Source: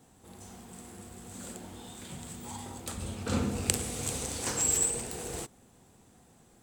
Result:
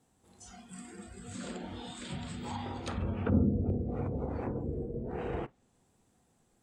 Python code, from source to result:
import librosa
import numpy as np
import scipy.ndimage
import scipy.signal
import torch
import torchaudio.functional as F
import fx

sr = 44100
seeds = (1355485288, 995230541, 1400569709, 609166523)

y = fx.env_lowpass_down(x, sr, base_hz=410.0, full_db=-29.5)
y = fx.noise_reduce_blind(y, sr, reduce_db=15)
y = y * 10.0 ** (4.5 / 20.0)